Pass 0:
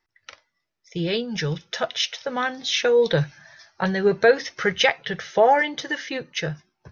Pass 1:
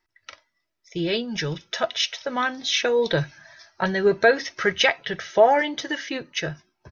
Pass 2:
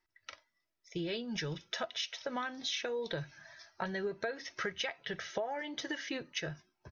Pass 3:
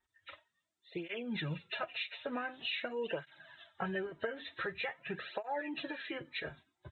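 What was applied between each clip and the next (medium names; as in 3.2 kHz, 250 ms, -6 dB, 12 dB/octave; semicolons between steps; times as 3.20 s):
comb 3.1 ms, depth 35%
compression 10:1, threshold -27 dBFS, peak gain reduction 17 dB; trim -6.5 dB
knee-point frequency compression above 1.6 kHz 1.5:1; cancelling through-zero flanger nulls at 0.46 Hz, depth 6.3 ms; trim +3 dB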